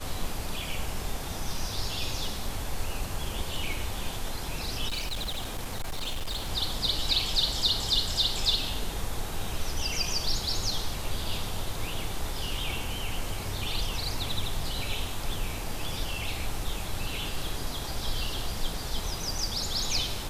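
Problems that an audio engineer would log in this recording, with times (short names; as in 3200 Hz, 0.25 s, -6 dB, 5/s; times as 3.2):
4.88–6.5 clipped -28 dBFS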